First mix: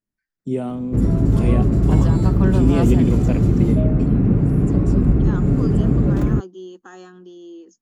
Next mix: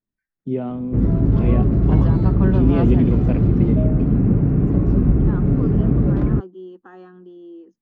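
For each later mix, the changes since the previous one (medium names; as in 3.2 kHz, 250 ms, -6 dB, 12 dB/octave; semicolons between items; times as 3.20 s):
second voice: add treble shelf 3.5 kHz -11 dB; master: add distance through air 280 m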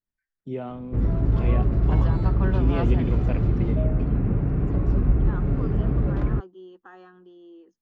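master: add peaking EQ 220 Hz -10.5 dB 2.3 oct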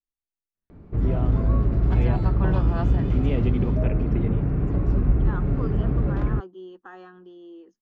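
first voice: entry +0.55 s; second voice +3.5 dB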